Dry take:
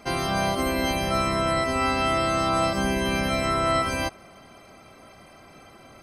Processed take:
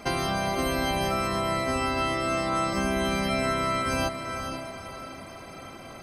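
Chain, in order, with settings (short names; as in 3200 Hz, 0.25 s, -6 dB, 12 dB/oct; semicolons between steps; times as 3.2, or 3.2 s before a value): compressor, threshold -29 dBFS, peak gain reduction 10 dB; diffused feedback echo 0.482 s, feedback 43%, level -7 dB; gain +4.5 dB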